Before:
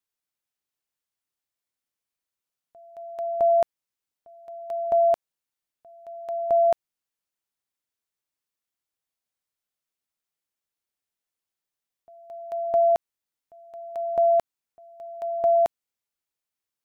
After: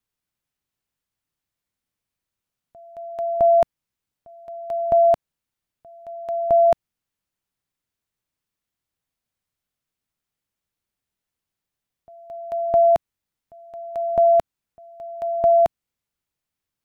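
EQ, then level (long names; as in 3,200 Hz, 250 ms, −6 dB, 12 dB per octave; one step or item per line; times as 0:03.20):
bass and treble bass +10 dB, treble −3 dB
+4.0 dB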